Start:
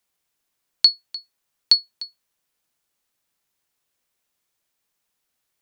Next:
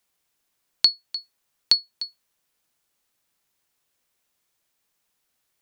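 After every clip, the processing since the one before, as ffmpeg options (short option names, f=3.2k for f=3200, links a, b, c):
-af "acompressor=threshold=-25dB:ratio=1.5,volume=2dB"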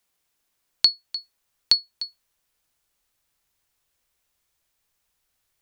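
-af "asubboost=boost=4:cutoff=100"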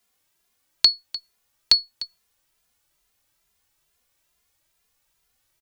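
-filter_complex "[0:a]asplit=2[a][b];[b]adelay=2.5,afreqshift=2.3[c];[a][c]amix=inputs=2:normalize=1,volume=6.5dB"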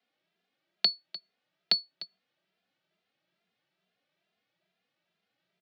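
-af "afreqshift=39,highpass=f=160:w=0.5412,highpass=f=160:w=1.3066,equalizer=f=180:t=q:w=4:g=9,equalizer=f=340:t=q:w=4:g=5,equalizer=f=650:t=q:w=4:g=7,equalizer=f=1k:t=q:w=4:g=-8,lowpass=f=3.9k:w=0.5412,lowpass=f=3.9k:w=1.3066,volume=-3.5dB"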